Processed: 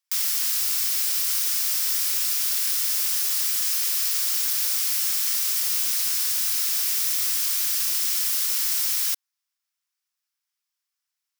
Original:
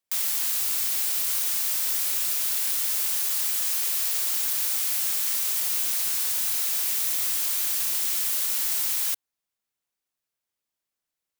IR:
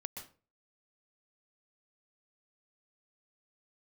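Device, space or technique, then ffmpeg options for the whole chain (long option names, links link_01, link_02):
headphones lying on a table: -af "highpass=frequency=1000:width=0.5412,highpass=frequency=1000:width=1.3066,equalizer=frequency=5300:width_type=o:width=0.34:gain=6,volume=1.5dB"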